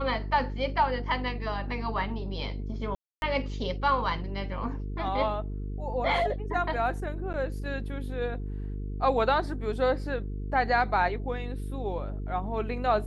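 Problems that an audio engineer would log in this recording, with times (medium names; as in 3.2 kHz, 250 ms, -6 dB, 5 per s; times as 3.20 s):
buzz 50 Hz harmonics 9 -34 dBFS
2.95–3.22 s: dropout 271 ms
7.33–7.34 s: dropout 9.6 ms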